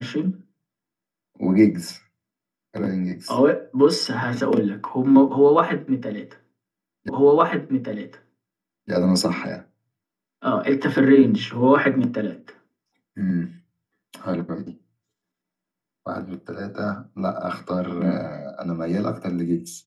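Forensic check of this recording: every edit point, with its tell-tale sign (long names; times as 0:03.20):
0:07.09: the same again, the last 1.82 s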